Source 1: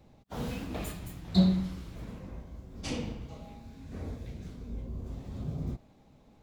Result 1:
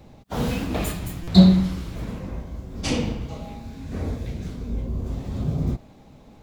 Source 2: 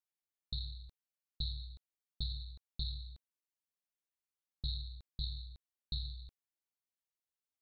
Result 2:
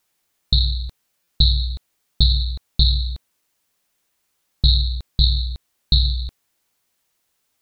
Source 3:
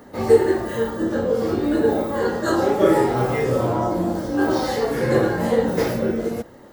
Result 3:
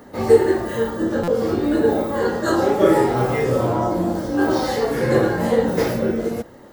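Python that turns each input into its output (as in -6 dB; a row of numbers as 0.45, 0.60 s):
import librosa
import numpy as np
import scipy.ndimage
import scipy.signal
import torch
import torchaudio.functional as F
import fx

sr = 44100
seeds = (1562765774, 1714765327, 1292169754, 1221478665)

y = fx.buffer_glitch(x, sr, at_s=(1.23,), block=256, repeats=7)
y = y * 10.0 ** (-2 / 20.0) / np.max(np.abs(y))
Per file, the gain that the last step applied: +11.0, +23.5, +1.0 dB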